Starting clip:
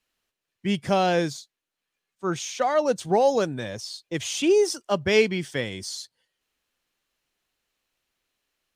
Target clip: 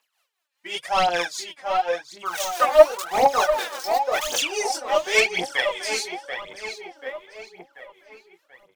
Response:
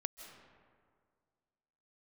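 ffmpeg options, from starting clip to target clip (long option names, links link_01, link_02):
-filter_complex "[0:a]asplit=3[link_01][link_02][link_03];[link_01]afade=type=out:start_time=2.25:duration=0.02[link_04];[link_02]aeval=exprs='val(0)*gte(abs(val(0)),0.0266)':channel_layout=same,afade=type=in:start_time=2.25:duration=0.02,afade=type=out:start_time=4.38:duration=0.02[link_05];[link_03]afade=type=in:start_time=4.38:duration=0.02[link_06];[link_04][link_05][link_06]amix=inputs=3:normalize=0,highpass=frequency=790:width_type=q:width=1.5,asplit=2[link_07][link_08];[link_08]adelay=23,volume=-3dB[link_09];[link_07][link_09]amix=inputs=2:normalize=0,aeval=exprs='0.596*sin(PI/2*2.24*val(0)/0.596)':channel_layout=same,tremolo=f=5:d=0.71,asplit=2[link_10][link_11];[link_11]adelay=736,lowpass=frequency=3000:poles=1,volume=-6dB,asplit=2[link_12][link_13];[link_13]adelay=736,lowpass=frequency=3000:poles=1,volume=0.51,asplit=2[link_14][link_15];[link_15]adelay=736,lowpass=frequency=3000:poles=1,volume=0.51,asplit=2[link_16][link_17];[link_17]adelay=736,lowpass=frequency=3000:poles=1,volume=0.51,asplit=2[link_18][link_19];[link_19]adelay=736,lowpass=frequency=3000:poles=1,volume=0.51,asplit=2[link_20][link_21];[link_21]adelay=736,lowpass=frequency=3000:poles=1,volume=0.51[link_22];[link_12][link_14][link_16][link_18][link_20][link_22]amix=inputs=6:normalize=0[link_23];[link_10][link_23]amix=inputs=2:normalize=0,aphaser=in_gain=1:out_gain=1:delay=3.9:decay=0.72:speed=0.92:type=triangular,volume=-7dB"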